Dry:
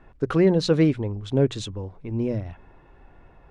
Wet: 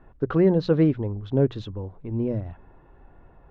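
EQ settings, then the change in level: air absorption 240 m; bell 2300 Hz -5.5 dB 0.51 oct; high shelf 5200 Hz -6.5 dB; 0.0 dB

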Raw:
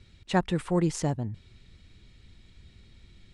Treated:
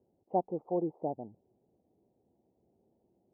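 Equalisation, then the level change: HPF 460 Hz 12 dB/oct; elliptic low-pass 790 Hz, stop band 50 dB; air absorption 370 m; +2.0 dB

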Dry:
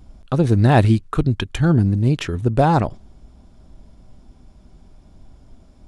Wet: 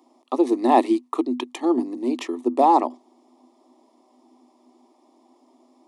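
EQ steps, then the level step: rippled Chebyshev high-pass 240 Hz, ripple 9 dB; Butterworth band-stop 1500 Hz, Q 2.4; bell 2700 Hz -4 dB 0.99 oct; +5.0 dB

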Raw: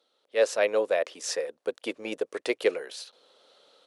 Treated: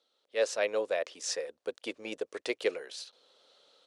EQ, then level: LPF 7100 Hz 12 dB/oct; bell 75 Hz +7 dB 0.77 oct; high shelf 4300 Hz +9 dB; -6.0 dB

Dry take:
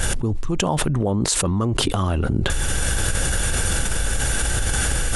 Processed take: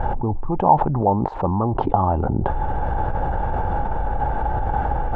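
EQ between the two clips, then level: synth low-pass 850 Hz, resonance Q 8; air absorption 120 m; -1.0 dB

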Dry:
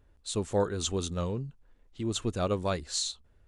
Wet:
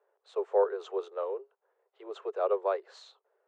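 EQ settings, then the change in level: steep high-pass 390 Hz 96 dB/oct; LPF 1100 Hz 12 dB/oct; +3.5 dB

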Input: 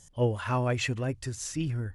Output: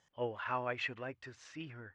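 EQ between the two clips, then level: HPF 1500 Hz 6 dB/oct; LPF 2300 Hz 12 dB/oct; air absorption 65 m; +1.0 dB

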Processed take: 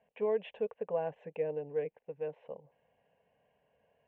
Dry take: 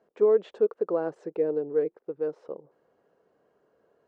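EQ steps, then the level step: synth low-pass 2800 Hz, resonance Q 3.7; low shelf 200 Hz +7 dB; fixed phaser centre 1300 Hz, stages 6; -3.0 dB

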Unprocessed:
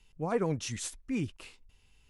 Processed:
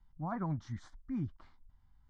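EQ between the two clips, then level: LPF 2200 Hz 6 dB/oct; air absorption 210 m; fixed phaser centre 1100 Hz, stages 4; 0.0 dB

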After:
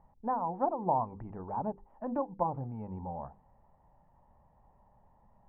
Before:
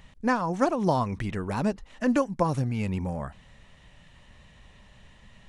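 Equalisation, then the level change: ladder low-pass 930 Hz, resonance 70%; notches 50/100/150/200/250/300/350/400/450/500 Hz; 0.0 dB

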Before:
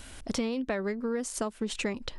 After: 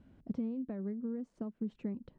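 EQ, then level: band-pass 180 Hz, Q 1.6; air absorption 59 m; -1.5 dB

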